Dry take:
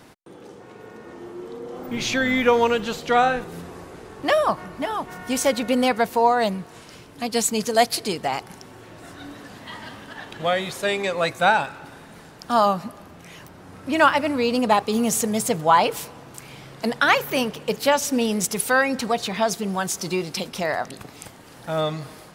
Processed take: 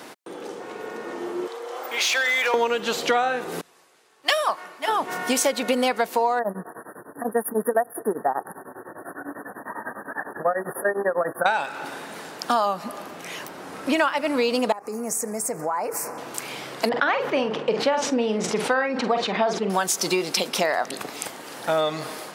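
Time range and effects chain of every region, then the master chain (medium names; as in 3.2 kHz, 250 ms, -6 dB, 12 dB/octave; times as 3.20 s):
1.47–2.54 s: Bessel high-pass 710 Hz, order 4 + compression 4:1, threshold -24 dBFS + overload inside the chain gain 24.5 dB
3.61–4.88 s: high-pass 1.1 kHz 6 dB/octave + three bands expanded up and down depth 100%
6.39–11.46 s: brick-wall FIR band-stop 1.9–9.5 kHz + tremolo of two beating tones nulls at 10 Hz
14.72–16.18 s: dynamic bell 8.5 kHz, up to +6 dB, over -42 dBFS, Q 4.7 + compression, threshold -32 dBFS + Butterworth band-stop 3.4 kHz, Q 0.95
16.89–19.70 s: tape spacing loss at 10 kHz 28 dB + doubling 46 ms -9 dB + decay stretcher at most 81 dB/s
whole clip: high-pass 310 Hz 12 dB/octave; compression 6:1, threshold -28 dBFS; trim +9 dB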